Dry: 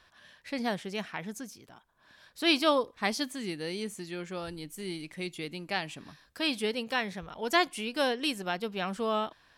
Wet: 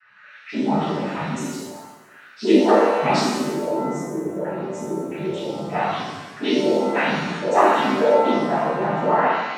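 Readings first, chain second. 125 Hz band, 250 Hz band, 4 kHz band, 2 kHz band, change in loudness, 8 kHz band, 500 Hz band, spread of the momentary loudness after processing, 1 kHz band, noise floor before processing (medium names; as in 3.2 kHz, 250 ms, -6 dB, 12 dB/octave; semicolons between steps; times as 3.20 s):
+13.5 dB, +12.0 dB, +1.0 dB, +6.5 dB, +11.0 dB, +6.5 dB, +13.5 dB, 12 LU, +14.0 dB, -64 dBFS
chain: spectral contrast enhancement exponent 3.5; noise-vocoded speech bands 12; pitch-shifted reverb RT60 1.1 s, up +7 st, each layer -8 dB, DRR -11.5 dB; trim +1 dB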